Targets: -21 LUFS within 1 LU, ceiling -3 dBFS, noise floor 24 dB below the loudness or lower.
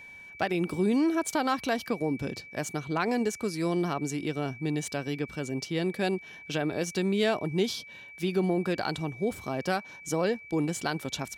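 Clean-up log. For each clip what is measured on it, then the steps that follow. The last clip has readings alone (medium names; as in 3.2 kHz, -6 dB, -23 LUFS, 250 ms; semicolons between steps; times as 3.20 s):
steady tone 2.3 kHz; tone level -45 dBFS; loudness -30.0 LUFS; peak level -15.0 dBFS; loudness target -21.0 LUFS
-> band-stop 2.3 kHz, Q 30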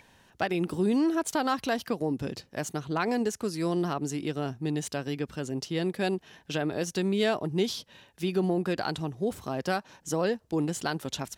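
steady tone not found; loudness -30.0 LUFS; peak level -15.0 dBFS; loudness target -21.0 LUFS
-> trim +9 dB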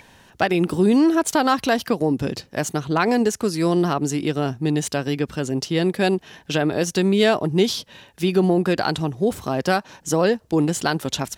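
loudness -21.0 LUFS; peak level -6.0 dBFS; noise floor -54 dBFS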